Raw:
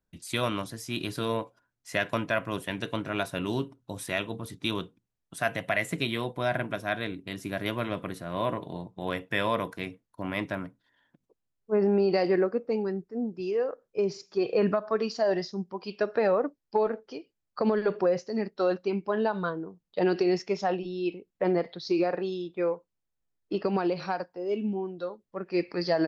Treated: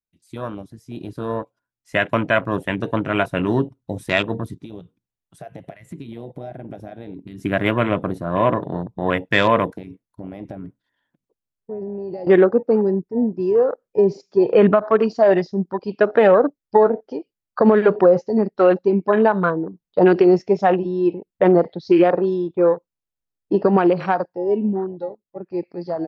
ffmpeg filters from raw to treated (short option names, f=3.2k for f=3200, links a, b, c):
-filter_complex "[0:a]asplit=3[a][b][c];[a]afade=t=out:st=4.53:d=0.02[d];[b]acompressor=threshold=-43dB:ratio=4:attack=3.2:release=140:knee=1:detection=peak,afade=t=in:st=4.53:d=0.02,afade=t=out:st=7.38:d=0.02[e];[c]afade=t=in:st=7.38:d=0.02[f];[d][e][f]amix=inputs=3:normalize=0,asettb=1/sr,asplit=3[g][h][i];[g]atrim=end=9.784[j];[h]atrim=start=9.78:end=12.27,asetpts=PTS-STARTPTS,afade=t=in:d=0.004:c=qsin,afade=t=out:st=2.486:d=0.004:c=qsin,acompressor=threshold=-39dB:ratio=6:attack=3.2:release=140:knee=1:detection=peak[k];[i]atrim=start=12.266[l];[j][k]acrossfade=d=0.004:c1=hsin:c2=qsin[m];[m][l]acrossfade=d=0.004:c1=qsin:c2=hsin,dynaudnorm=f=250:g=13:m=14dB,afwtdn=0.0447"